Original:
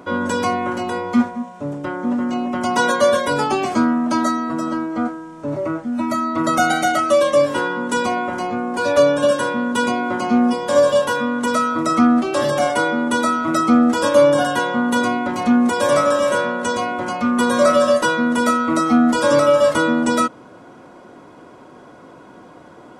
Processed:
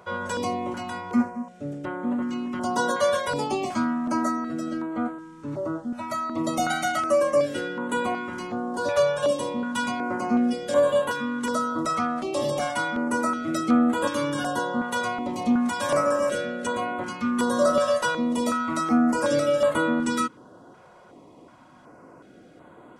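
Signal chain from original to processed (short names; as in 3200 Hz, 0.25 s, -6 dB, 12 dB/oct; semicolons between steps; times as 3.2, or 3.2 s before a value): stepped notch 2.7 Hz 280–5400 Hz; gain -6 dB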